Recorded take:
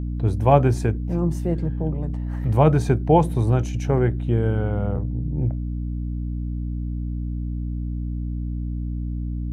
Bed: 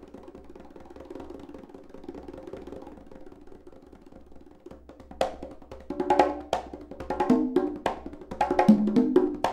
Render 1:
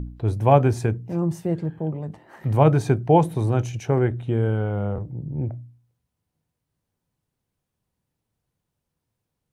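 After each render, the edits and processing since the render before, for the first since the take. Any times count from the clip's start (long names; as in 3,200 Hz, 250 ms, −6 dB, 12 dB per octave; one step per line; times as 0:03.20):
hum removal 60 Hz, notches 5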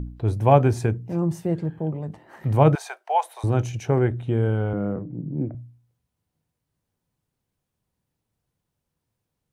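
0:02.75–0:03.44: Butterworth high-pass 660 Hz
0:04.73–0:05.55: loudspeaker in its box 150–2,300 Hz, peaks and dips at 180 Hz +7 dB, 290 Hz +10 dB, 850 Hz −8 dB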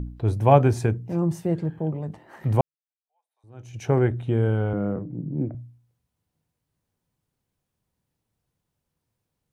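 0:02.61–0:03.84: fade in exponential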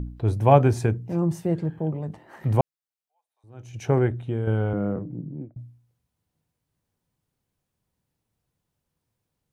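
0:03.94–0:04.47: fade out, to −7 dB
0:05.10–0:05.56: fade out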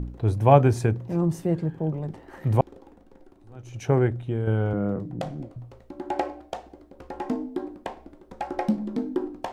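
mix in bed −6.5 dB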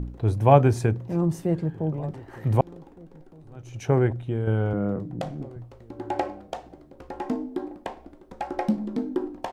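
slap from a distant wall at 260 metres, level −23 dB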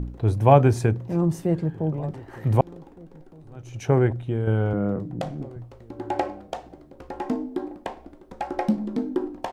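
level +1.5 dB
brickwall limiter −2 dBFS, peak gain reduction 1.5 dB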